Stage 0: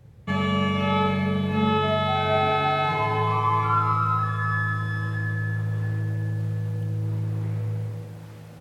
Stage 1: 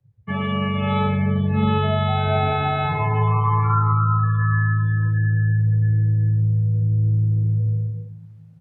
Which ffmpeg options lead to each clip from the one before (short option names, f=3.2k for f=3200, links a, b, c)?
-filter_complex "[0:a]afftdn=nr=23:nf=-30,acrossover=split=120|2400[a][b][c];[a]dynaudnorm=f=160:g=11:m=12dB[d];[d][b][c]amix=inputs=3:normalize=0"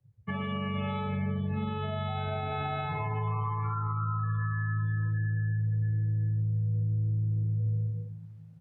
-af "alimiter=limit=-19.5dB:level=0:latency=1:release=389,volume=-4dB"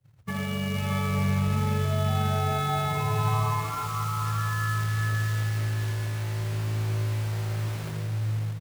-af "acrusher=bits=3:mode=log:mix=0:aa=0.000001,aecho=1:1:82|486|624:0.668|0.501|0.668,volume=1.5dB"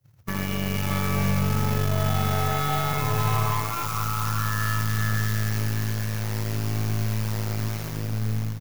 -af "aexciter=amount=2:drive=2.2:freq=5k,aeval=exprs='0.211*(cos(1*acos(clip(val(0)/0.211,-1,1)))-cos(1*PI/2))+0.0237*(cos(8*acos(clip(val(0)/0.211,-1,1)))-cos(8*PI/2))':c=same,volume=1dB"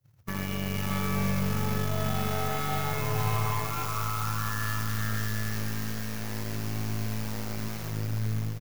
-af "aecho=1:1:505:0.398,volume=-4.5dB"